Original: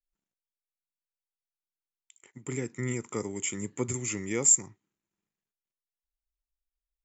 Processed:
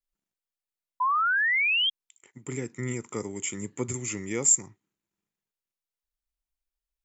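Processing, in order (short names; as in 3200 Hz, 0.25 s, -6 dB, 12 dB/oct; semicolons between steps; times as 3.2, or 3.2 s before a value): painted sound rise, 1–1.9, 980–3300 Hz -24 dBFS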